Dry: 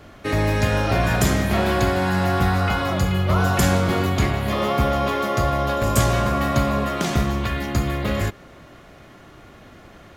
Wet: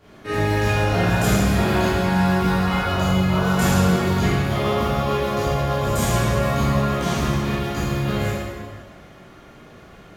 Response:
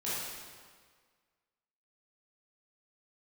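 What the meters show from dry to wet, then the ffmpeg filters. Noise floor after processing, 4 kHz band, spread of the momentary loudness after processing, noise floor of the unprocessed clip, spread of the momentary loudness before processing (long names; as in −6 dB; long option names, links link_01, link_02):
−46 dBFS, +0.5 dB, 6 LU, −46 dBFS, 5 LU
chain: -filter_complex "[1:a]atrim=start_sample=2205[link_01];[0:a][link_01]afir=irnorm=-1:irlink=0,volume=-5dB"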